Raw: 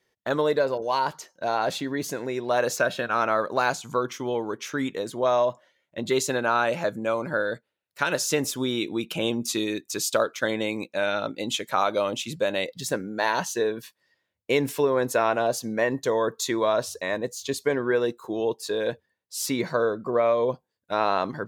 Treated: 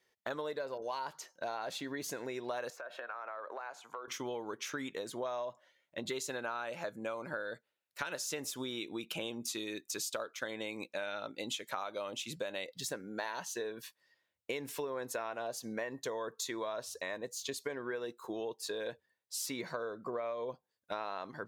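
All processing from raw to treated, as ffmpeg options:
-filter_complex "[0:a]asettb=1/sr,asplit=3[a][b][c];[a]atrim=end=2.704[d];[b]atrim=start=2.7:end=4.08,asetpts=PTS-STARTPTS,afade=t=in:d=0.004:c=qsin,afade=t=out:st=1.376:d=0.004:c=qsin,highpass=150,acrossover=split=410 2100:gain=0.0891 1 0.158[e][f][g];[e][f][g]amix=inputs=3:normalize=0,acompressor=threshold=-34dB:ratio=10:attack=3.2:release=140:knee=1:detection=peak[h];[c]atrim=start=4.076[i];[d][h]acrossfade=d=0.004:c1=hsin:c2=qsin[j];[j][i]acrossfade=d=0.004:c1=qsin:c2=hsin,lowshelf=f=360:g=-8,acompressor=threshold=-34dB:ratio=5,volume=-2.5dB"

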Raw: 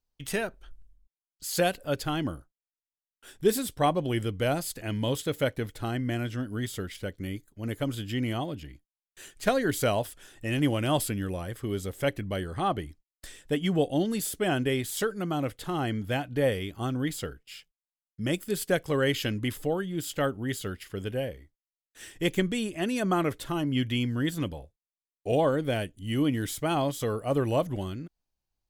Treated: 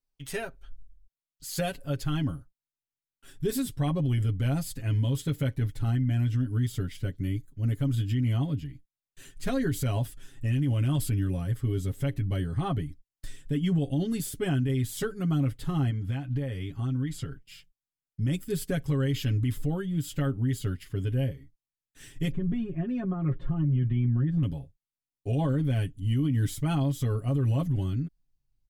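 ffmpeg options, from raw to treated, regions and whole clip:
-filter_complex "[0:a]asettb=1/sr,asplit=3[a][b][c];[a]atrim=end=15.904[d];[b]atrim=start=15.9:end=17.4,asetpts=PTS-STARTPTS,afade=t=in:d=0.004:c=qsin,afade=t=out:st=1.496:d=0.004:c=qsin,lowpass=11k,equalizer=f=1.3k:t=o:w=2.3:g=3.5,acompressor=threshold=-35dB:ratio=3:attack=3.2:release=140:knee=1:detection=peak[e];[c]atrim=start=17.396[f];[d][e]acrossfade=d=0.004:c1=hsin:c2=qsin[g];[g][f]acrossfade=d=0.004:c1=qsin:c2=hsin,asettb=1/sr,asplit=3[h][i][j];[h]atrim=end=22.314[k];[i]atrim=start=22.31:end=24.43,asetpts=PTS-STARTPTS,afade=t=in:d=0.004:c=qsin,afade=t=out:st=2.116:d=0.004:c=qsin,aecho=1:1:5.6:0.9,atrim=end_sample=93492,acompressor=threshold=-26dB:ratio=10:attack=3.2:release=140:knee=1:detection=peak,lowpass=1.3k[l];[j]atrim=start=24.426[m];[k][l]acrossfade=d=0.004:c1=hsin:c2=qsin[n];[n][m]acrossfade=d=0.004:c1=qsin:c2=hsin,asubboost=boost=5.5:cutoff=230,aecho=1:1:7.3:0.78,alimiter=limit=-13.5dB:level=0:latency=1:release=43,volume=-6dB"

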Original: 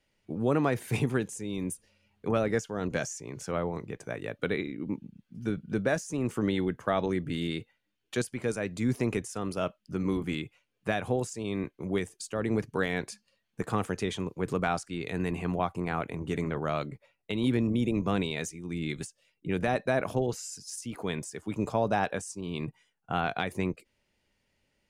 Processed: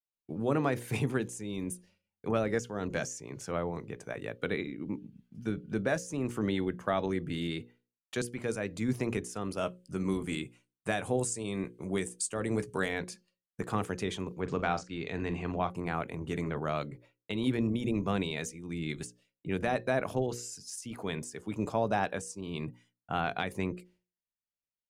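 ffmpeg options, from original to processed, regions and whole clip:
-filter_complex "[0:a]asettb=1/sr,asplit=3[a][b][c];[a]atrim=end=9.584[d];[b]atrim=start=9.58:end=12.89,asetpts=PTS-STARTPTS,afade=t=in:d=0.004:c=qsin,afade=t=out:st=3.306:d=0.004:c=qsin,equalizer=f=8.6k:t=o:w=0.59:g=13.5,asplit=2[e][f];[f]adelay=16,volume=-13.5dB[g];[e][g]amix=inputs=2:normalize=0,atrim=end_sample=145971[h];[c]atrim=start=12.886[i];[d][h]acrossfade=d=0.004:c1=hsin:c2=qsin[j];[j][i]acrossfade=d=0.004:c1=qsin:c2=hsin,asettb=1/sr,asplit=3[k][l][m];[k]atrim=end=14.404[n];[l]atrim=start=14.4:end=15.7,asetpts=PTS-STARTPTS,afade=t=in:d=0.004:c=qsin,afade=t=out:st=1.296:d=0.004:c=qsin,lowpass=f=6.6k:w=0.5412,lowpass=f=6.6k:w=1.3066,asplit=2[o][p];[p]adelay=44,volume=-13dB[q];[o][q]amix=inputs=2:normalize=0,atrim=end_sample=57330[r];[m]atrim=start=15.696[s];[n][r]acrossfade=d=0.004:c1=hsin:c2=qsin[t];[t][s]acrossfade=d=0.004:c1=qsin:c2=hsin,agate=range=-33dB:threshold=-56dB:ratio=3:detection=peak,bandreject=f=60:t=h:w=6,bandreject=f=120:t=h:w=6,bandreject=f=180:t=h:w=6,bandreject=f=240:t=h:w=6,bandreject=f=300:t=h:w=6,bandreject=f=360:t=h:w=6,bandreject=f=420:t=h:w=6,bandreject=f=480:t=h:w=6,bandreject=f=540:t=h:w=6,volume=-2dB"

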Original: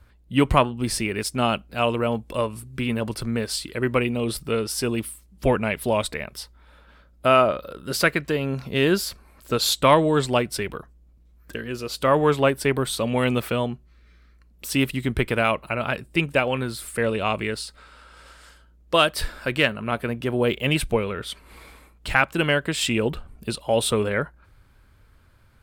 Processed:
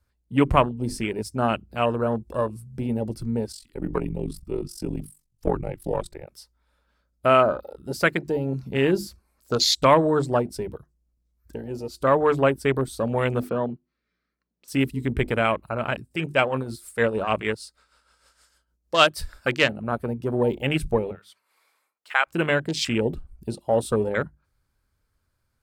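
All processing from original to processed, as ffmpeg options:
-filter_complex "[0:a]asettb=1/sr,asplit=3[a][b][c];[a]atrim=end=3.524[d];[b]atrim=start=3.52:end=6.27,asetpts=PTS-STARTPTS,afade=t=in:d=0.004:c=qsin,afade=t=out:st=2.746:d=0.004:c=qsin,afreqshift=-76,tremolo=f=46:d=0.824[e];[c]atrim=start=6.266[f];[d][e]acrossfade=d=0.004:c1=hsin:c2=qsin[g];[g][f]acrossfade=d=0.004:c1=qsin:c2=hsin,asettb=1/sr,asplit=3[h][i][j];[h]atrim=end=13.494[k];[i]atrim=start=13.49:end=14.68,asetpts=PTS-STARTPTS,afade=t=in:d=0.004:c=qsin,afade=t=out:st=1.186:d=0.004:c=qsin,highpass=150,lowpass=3.6k,deesser=0.9[l];[j]atrim=start=14.676[m];[k][l]acrossfade=d=0.004:c1=hsin:c2=qsin[n];[n][m]acrossfade=d=0.004:c1=qsin:c2=hsin,asettb=1/sr,asplit=3[o][p][q];[o]atrim=end=16.114[r];[p]atrim=start=16.11:end=19.64,asetpts=PTS-STARTPTS,afade=t=in:d=0.004:c=qsin,afade=t=out:st=3.526:d=0.004:c=qsin,lowshelf=f=420:g=-4.5,acontrast=36,tremolo=f=6.5:d=0.61[s];[q]atrim=start=19.636[t];[r][s]acrossfade=d=0.004:c1=hsin:c2=qsin[u];[u][t]acrossfade=d=0.004:c1=qsin:c2=hsin,asettb=1/sr,asplit=3[v][w][x];[v]atrim=end=21.114[y];[w]atrim=start=21.11:end=22.27,asetpts=PTS-STARTPTS,afade=t=in:d=0.004:c=qsin,afade=t=out:st=1.156:d=0.004:c=qsin,highpass=750,equalizer=f=8.4k:t=o:w=1.9:g=-7[z];[x]atrim=start=22.266[aa];[y][z]acrossfade=d=0.004:c1=hsin:c2=qsin[ab];[ab][aa]acrossfade=d=0.004:c1=qsin:c2=hsin,bandreject=f=50:t=h:w=6,bandreject=f=100:t=h:w=6,bandreject=f=150:t=h:w=6,bandreject=f=200:t=h:w=6,bandreject=f=250:t=h:w=6,bandreject=f=300:t=h:w=6,bandreject=f=350:t=h:w=6,afwtdn=0.0447,highshelf=f=4.1k:t=q:w=1.5:g=6"

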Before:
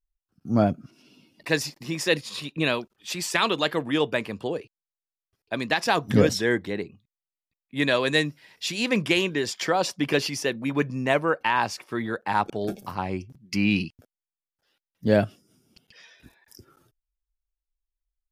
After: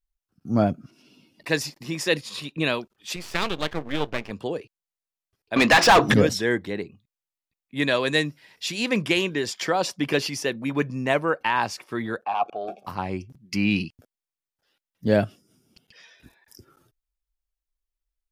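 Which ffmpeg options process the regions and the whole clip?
-filter_complex "[0:a]asettb=1/sr,asplit=3[a][b][c];[a]atrim=end=3.164[d];[b]atrim=start=3.16:end=4.31,asetpts=PTS-STARTPTS,afade=t=in:d=0.004:c=qsin,afade=t=out:st=1.146:d=0.004:c=qsin,lowpass=4k,acompressor=mode=upward:threshold=-30dB:ratio=2.5:attack=3.2:release=140:knee=2.83:detection=peak,aeval=exprs='max(val(0),0)':c=same[e];[c]atrim=start=4.306[f];[d][e]acrossfade=d=0.004:c1=hsin:c2=qsin[g];[g][f]acrossfade=d=0.004:c1=qsin:c2=hsin,asettb=1/sr,asplit=3[h][i][j];[h]atrim=end=5.564[k];[i]atrim=start=5.56:end=6.14,asetpts=PTS-STARTPTS,afade=t=in:d=0.004:c=qsin,afade=t=out:st=0.576:d=0.004:c=qsin,lowpass=11k,bandreject=f=50:t=h:w=6,bandreject=f=100:t=h:w=6,bandreject=f=150:t=h:w=6,bandreject=f=200:t=h:w=6,bandreject=f=250:t=h:w=6,bandreject=f=300:t=h:w=6,bandreject=f=350:t=h:w=6,asplit=2[l][m];[m]highpass=f=720:p=1,volume=30dB,asoftclip=type=tanh:threshold=-6dB[n];[l][n]amix=inputs=2:normalize=0,lowpass=f=3k:p=1,volume=-6dB[o];[j]atrim=start=6.136[p];[k][o]acrossfade=d=0.004:c1=hsin:c2=qsin[q];[q][p]acrossfade=d=0.004:c1=qsin:c2=hsin,asettb=1/sr,asplit=3[r][s][t];[r]atrim=end=12.244[u];[s]atrim=start=12.24:end=12.87,asetpts=PTS-STARTPTS,afade=t=in:d=0.004:c=qsin,afade=t=out:st=0.626:d=0.004:c=qsin,aeval=exprs='0.422*sin(PI/2*2.24*val(0)/0.422)':c=same,asplit=3[v][w][x];[v]bandpass=f=730:t=q:w=8,volume=0dB[y];[w]bandpass=f=1.09k:t=q:w=8,volume=-6dB[z];[x]bandpass=f=2.44k:t=q:w=8,volume=-9dB[aa];[y][z][aa]amix=inputs=3:normalize=0[ab];[t]atrim=start=12.866[ac];[u][ab]acrossfade=d=0.004:c1=hsin:c2=qsin[ad];[ad][ac]acrossfade=d=0.004:c1=qsin:c2=hsin"

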